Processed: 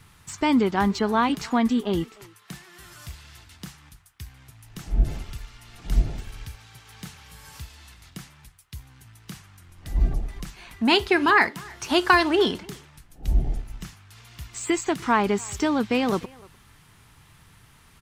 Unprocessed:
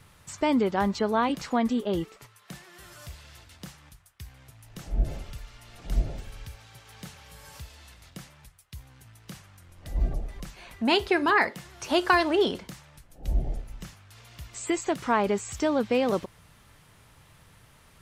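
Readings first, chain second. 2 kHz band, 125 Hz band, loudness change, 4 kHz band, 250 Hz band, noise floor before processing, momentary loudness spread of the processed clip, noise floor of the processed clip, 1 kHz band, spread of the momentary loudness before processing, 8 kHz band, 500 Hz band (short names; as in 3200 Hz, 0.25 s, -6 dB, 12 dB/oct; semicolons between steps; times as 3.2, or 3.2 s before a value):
+4.5 dB, +4.5 dB, +3.5 dB, +4.5 dB, +4.0 dB, -57 dBFS, 24 LU, -55 dBFS, +3.5 dB, 23 LU, +4.0 dB, +1.0 dB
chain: bell 560 Hz -10 dB 0.52 oct; in parallel at -9.5 dB: crossover distortion -42 dBFS; on the sum: speakerphone echo 0.3 s, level -23 dB; gain +2.5 dB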